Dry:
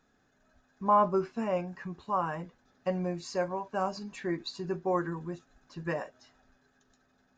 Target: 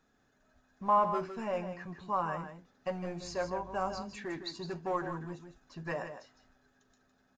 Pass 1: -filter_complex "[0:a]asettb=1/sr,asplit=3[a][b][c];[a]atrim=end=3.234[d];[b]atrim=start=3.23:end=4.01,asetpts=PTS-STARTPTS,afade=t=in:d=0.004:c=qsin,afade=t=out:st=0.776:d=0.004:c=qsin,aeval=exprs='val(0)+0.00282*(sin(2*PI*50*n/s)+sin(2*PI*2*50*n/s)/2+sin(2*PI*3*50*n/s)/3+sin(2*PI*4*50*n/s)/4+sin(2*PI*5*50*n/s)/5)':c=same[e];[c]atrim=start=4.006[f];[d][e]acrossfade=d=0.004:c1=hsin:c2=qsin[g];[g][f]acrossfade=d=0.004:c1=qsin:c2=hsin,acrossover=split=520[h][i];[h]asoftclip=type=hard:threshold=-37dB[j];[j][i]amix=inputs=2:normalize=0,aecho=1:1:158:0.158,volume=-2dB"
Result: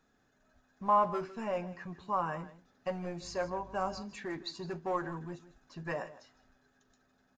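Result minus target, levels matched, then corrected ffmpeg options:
echo-to-direct -7 dB
-filter_complex "[0:a]asettb=1/sr,asplit=3[a][b][c];[a]atrim=end=3.234[d];[b]atrim=start=3.23:end=4.01,asetpts=PTS-STARTPTS,afade=t=in:d=0.004:c=qsin,afade=t=out:st=0.776:d=0.004:c=qsin,aeval=exprs='val(0)+0.00282*(sin(2*PI*50*n/s)+sin(2*PI*2*50*n/s)/2+sin(2*PI*3*50*n/s)/3+sin(2*PI*4*50*n/s)/4+sin(2*PI*5*50*n/s)/5)':c=same[e];[c]atrim=start=4.006[f];[d][e]acrossfade=d=0.004:c1=hsin:c2=qsin[g];[g][f]acrossfade=d=0.004:c1=qsin:c2=hsin,acrossover=split=520[h][i];[h]asoftclip=type=hard:threshold=-37dB[j];[j][i]amix=inputs=2:normalize=0,aecho=1:1:158:0.355,volume=-2dB"

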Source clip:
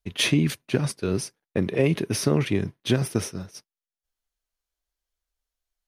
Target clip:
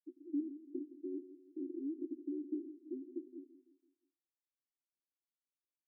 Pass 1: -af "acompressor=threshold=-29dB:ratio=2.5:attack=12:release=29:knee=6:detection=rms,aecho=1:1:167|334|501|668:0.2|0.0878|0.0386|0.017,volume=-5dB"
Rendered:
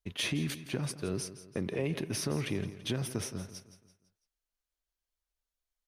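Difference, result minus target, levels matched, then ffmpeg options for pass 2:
250 Hz band -5.0 dB
-af "acompressor=threshold=-29dB:ratio=2.5:attack=12:release=29:knee=6:detection=rms,asuperpass=centerf=310:order=12:qfactor=2.9,aecho=1:1:167|334|501|668:0.2|0.0878|0.0386|0.017,volume=-5dB"

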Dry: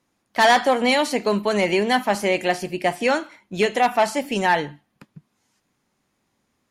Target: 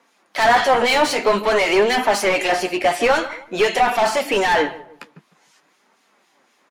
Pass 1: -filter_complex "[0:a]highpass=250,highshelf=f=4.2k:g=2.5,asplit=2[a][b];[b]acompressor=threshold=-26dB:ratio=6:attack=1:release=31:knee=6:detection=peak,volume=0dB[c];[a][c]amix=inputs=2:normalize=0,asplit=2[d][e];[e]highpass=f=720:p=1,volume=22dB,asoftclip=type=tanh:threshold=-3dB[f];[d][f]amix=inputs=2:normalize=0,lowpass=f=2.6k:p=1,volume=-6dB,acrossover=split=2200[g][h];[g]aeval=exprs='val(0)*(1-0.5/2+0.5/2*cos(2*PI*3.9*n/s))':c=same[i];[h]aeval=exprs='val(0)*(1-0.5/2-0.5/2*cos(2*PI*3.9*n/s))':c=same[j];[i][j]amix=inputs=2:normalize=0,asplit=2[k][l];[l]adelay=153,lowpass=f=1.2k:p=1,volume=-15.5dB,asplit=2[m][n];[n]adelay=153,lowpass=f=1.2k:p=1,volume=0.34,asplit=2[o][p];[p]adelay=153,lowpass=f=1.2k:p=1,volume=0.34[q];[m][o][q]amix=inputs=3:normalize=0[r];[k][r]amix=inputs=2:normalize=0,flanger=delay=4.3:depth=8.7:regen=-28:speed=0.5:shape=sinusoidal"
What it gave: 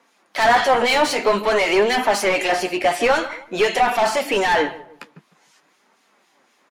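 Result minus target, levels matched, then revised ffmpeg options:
compressor: peak gain reduction +7 dB
-filter_complex "[0:a]highpass=250,highshelf=f=4.2k:g=2.5,asplit=2[a][b];[b]acompressor=threshold=-17.5dB:ratio=6:attack=1:release=31:knee=6:detection=peak,volume=0dB[c];[a][c]amix=inputs=2:normalize=0,asplit=2[d][e];[e]highpass=f=720:p=1,volume=22dB,asoftclip=type=tanh:threshold=-3dB[f];[d][f]amix=inputs=2:normalize=0,lowpass=f=2.6k:p=1,volume=-6dB,acrossover=split=2200[g][h];[g]aeval=exprs='val(0)*(1-0.5/2+0.5/2*cos(2*PI*3.9*n/s))':c=same[i];[h]aeval=exprs='val(0)*(1-0.5/2-0.5/2*cos(2*PI*3.9*n/s))':c=same[j];[i][j]amix=inputs=2:normalize=0,asplit=2[k][l];[l]adelay=153,lowpass=f=1.2k:p=1,volume=-15.5dB,asplit=2[m][n];[n]adelay=153,lowpass=f=1.2k:p=1,volume=0.34,asplit=2[o][p];[p]adelay=153,lowpass=f=1.2k:p=1,volume=0.34[q];[m][o][q]amix=inputs=3:normalize=0[r];[k][r]amix=inputs=2:normalize=0,flanger=delay=4.3:depth=8.7:regen=-28:speed=0.5:shape=sinusoidal"

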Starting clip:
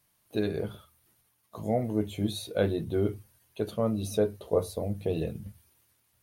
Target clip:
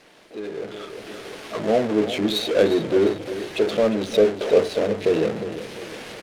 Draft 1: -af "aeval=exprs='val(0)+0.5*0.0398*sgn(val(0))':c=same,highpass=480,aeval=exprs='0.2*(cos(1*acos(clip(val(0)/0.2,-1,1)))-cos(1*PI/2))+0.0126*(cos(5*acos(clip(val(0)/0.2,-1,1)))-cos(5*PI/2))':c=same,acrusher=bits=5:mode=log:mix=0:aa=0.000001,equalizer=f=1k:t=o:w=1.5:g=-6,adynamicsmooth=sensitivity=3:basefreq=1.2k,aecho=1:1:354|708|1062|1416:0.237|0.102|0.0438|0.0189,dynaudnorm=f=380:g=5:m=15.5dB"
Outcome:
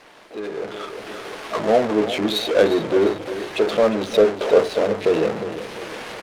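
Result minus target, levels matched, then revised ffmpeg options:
1000 Hz band +4.0 dB
-af "aeval=exprs='val(0)+0.5*0.0398*sgn(val(0))':c=same,highpass=480,aeval=exprs='0.2*(cos(1*acos(clip(val(0)/0.2,-1,1)))-cos(1*PI/2))+0.0126*(cos(5*acos(clip(val(0)/0.2,-1,1)))-cos(5*PI/2))':c=same,acrusher=bits=5:mode=log:mix=0:aa=0.000001,equalizer=f=1k:t=o:w=1.5:g=-14.5,adynamicsmooth=sensitivity=3:basefreq=1.2k,aecho=1:1:354|708|1062|1416:0.237|0.102|0.0438|0.0189,dynaudnorm=f=380:g=5:m=15.5dB"

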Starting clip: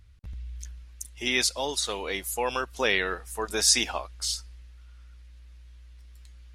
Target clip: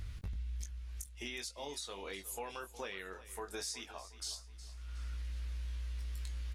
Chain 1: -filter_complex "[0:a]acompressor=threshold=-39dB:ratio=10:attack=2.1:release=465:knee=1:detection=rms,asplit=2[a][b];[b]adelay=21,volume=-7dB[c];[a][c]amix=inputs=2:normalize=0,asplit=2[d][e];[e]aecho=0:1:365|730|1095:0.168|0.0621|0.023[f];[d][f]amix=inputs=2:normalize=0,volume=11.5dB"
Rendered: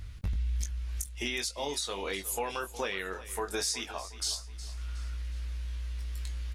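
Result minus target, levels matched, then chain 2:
compressor: peak gain reduction -9.5 dB
-filter_complex "[0:a]acompressor=threshold=-49.5dB:ratio=10:attack=2.1:release=465:knee=1:detection=rms,asplit=2[a][b];[b]adelay=21,volume=-7dB[c];[a][c]amix=inputs=2:normalize=0,asplit=2[d][e];[e]aecho=0:1:365|730|1095:0.168|0.0621|0.023[f];[d][f]amix=inputs=2:normalize=0,volume=11.5dB"

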